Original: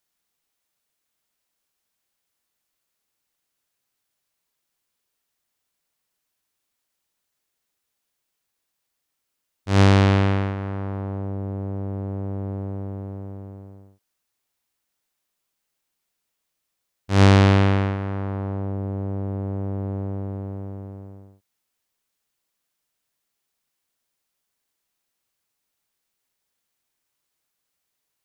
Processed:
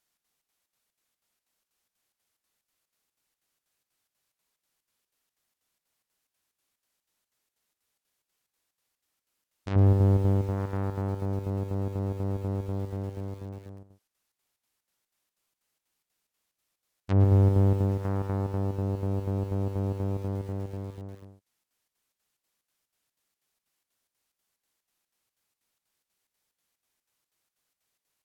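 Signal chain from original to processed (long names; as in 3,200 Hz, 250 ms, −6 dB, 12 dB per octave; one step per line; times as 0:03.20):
square-wave tremolo 4.1 Hz, depth 60%, duty 70%
soft clipping −15.5 dBFS, distortion −12 dB
treble cut that deepens with the level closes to 580 Hz, closed at −22.5 dBFS
feedback echo at a low word length 110 ms, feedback 35%, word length 7 bits, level −11.5 dB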